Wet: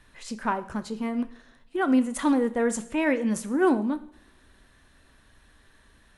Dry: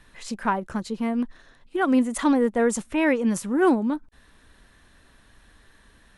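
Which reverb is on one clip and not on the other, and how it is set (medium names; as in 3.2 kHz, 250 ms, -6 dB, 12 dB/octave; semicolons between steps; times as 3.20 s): two-slope reverb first 0.57 s, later 1.8 s, from -23 dB, DRR 10 dB; trim -3 dB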